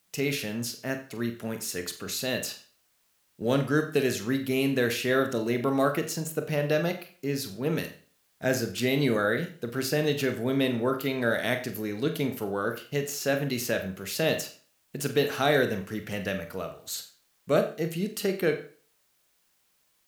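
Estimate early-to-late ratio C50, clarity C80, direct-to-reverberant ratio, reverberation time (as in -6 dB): 11.0 dB, 13.5 dB, 6.0 dB, 0.45 s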